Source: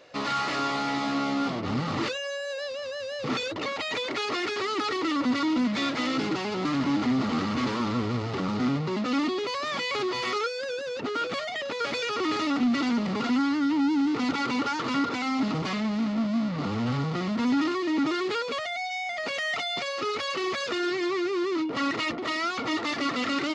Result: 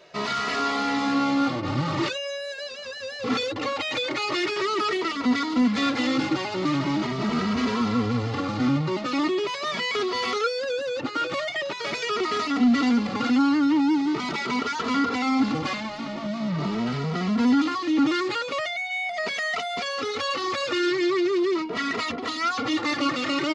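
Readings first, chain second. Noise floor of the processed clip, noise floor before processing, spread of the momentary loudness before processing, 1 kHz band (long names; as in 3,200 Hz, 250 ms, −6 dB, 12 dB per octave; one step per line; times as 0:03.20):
−34 dBFS, −33 dBFS, 5 LU, +2.5 dB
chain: barber-pole flanger 2.7 ms +0.42 Hz
level +5.5 dB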